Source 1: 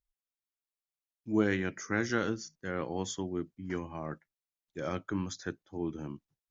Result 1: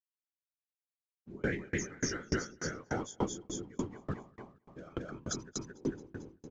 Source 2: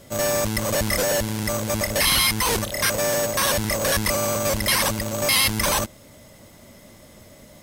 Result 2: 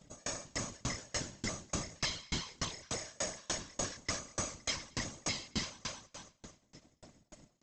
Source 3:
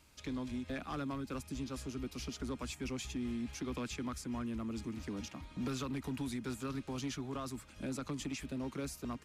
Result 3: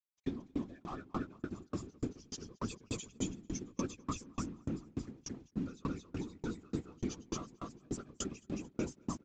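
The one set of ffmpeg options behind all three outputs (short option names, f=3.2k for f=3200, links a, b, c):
-af "aemphasis=mode=production:type=50fm,afftdn=nr=14:nf=-38,equalizer=f=560:w=4:g=-6,acompressor=threshold=-28dB:ratio=2.5,alimiter=limit=-21dB:level=0:latency=1:release=44,aresample=16000,aeval=exprs='sgn(val(0))*max(abs(val(0))-0.0015,0)':c=same,aresample=44100,afftfilt=real='hypot(re,im)*cos(2*PI*random(0))':imag='hypot(re,im)*sin(2*PI*random(1))':win_size=512:overlap=0.75,aecho=1:1:223|446|669|892|1115:0.631|0.265|0.111|0.0467|0.0196,aeval=exprs='val(0)*pow(10,-33*if(lt(mod(3.4*n/s,1),2*abs(3.4)/1000),1-mod(3.4*n/s,1)/(2*abs(3.4)/1000),(mod(3.4*n/s,1)-2*abs(3.4)/1000)/(1-2*abs(3.4)/1000))/20)':c=same,volume=14dB"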